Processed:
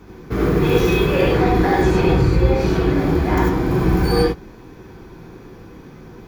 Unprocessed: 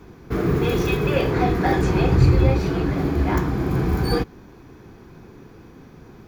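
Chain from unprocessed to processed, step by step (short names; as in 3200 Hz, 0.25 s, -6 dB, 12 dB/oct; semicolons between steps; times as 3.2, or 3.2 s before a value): limiter -11.5 dBFS, peak gain reduction 6.5 dB; non-linear reverb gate 0.12 s rising, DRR -2 dB; gain +1 dB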